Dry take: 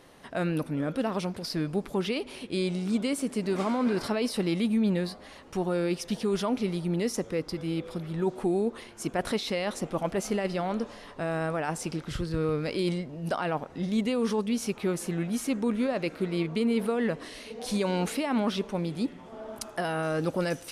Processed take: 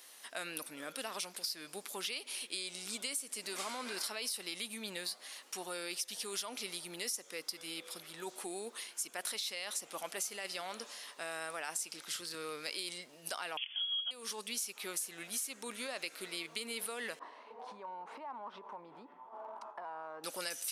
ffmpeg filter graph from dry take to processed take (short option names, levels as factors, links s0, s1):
-filter_complex "[0:a]asettb=1/sr,asplit=3[s0][s1][s2];[s0]atrim=end=13.574[s3];[s1]atrim=start=13.57:end=14.11,asetpts=PTS-STARTPTS,afade=t=in:d=0.004:c=qsin,afade=t=out:st=0.536:d=0.004:c=qsin,lowpass=f=3000:t=q:w=0.5098,lowpass=f=3000:t=q:w=0.6013,lowpass=f=3000:t=q:w=0.9,lowpass=f=3000:t=q:w=2.563,afreqshift=-3500,equalizer=f=280:w=0.4:g=5.5,aecho=1:1:4.3:0.34,atrim=end_sample=23814[s4];[s2]atrim=start=14.106[s5];[s3][s4]acrossfade=d=0.004:c1=hsin:c2=qsin[s6];[s6][s5]acrossfade=d=0.004:c1=qsin:c2=hsin,asettb=1/sr,asplit=3[s7][s8][s9];[s7]atrim=end=17.194[s10];[s8]atrim=start=17.19:end=20.24,asetpts=PTS-STARTPTS,afade=t=in:d=0.004:c=qsin,afade=t=out:st=3.046:d=0.004:c=qsin,agate=range=0.0224:threshold=0.00631:ratio=3:release=100:detection=peak,lowpass=f=960:t=q:w=6,acompressor=threshold=0.0282:ratio=8:attack=3.2:release=140:knee=1:detection=peak[s11];[s9]atrim=start=20.236[s12];[s10][s11]acrossfade=d=0.004:c1=hsin:c2=qsin[s13];[s13][s12]acrossfade=d=0.004:c1=qsin:c2=hsin,highpass=200,aderivative,acompressor=threshold=0.00631:ratio=10,volume=2.82"